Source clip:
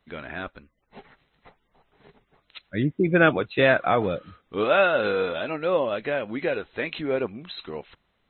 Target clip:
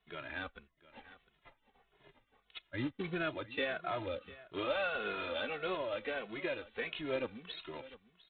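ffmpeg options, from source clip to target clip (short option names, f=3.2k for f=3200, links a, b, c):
-filter_complex "[0:a]alimiter=limit=-17.5dB:level=0:latency=1:release=434,aemphasis=mode=production:type=75kf,aresample=8000,acrusher=bits=3:mode=log:mix=0:aa=0.000001,aresample=44100,equalizer=f=170:t=o:w=0.93:g=-5,asplit=2[a][b];[b]aecho=0:1:702:0.119[c];[a][c]amix=inputs=2:normalize=0,asplit=2[d][e];[e]adelay=2.3,afreqshift=-1.6[f];[d][f]amix=inputs=2:normalize=1,volume=-6dB"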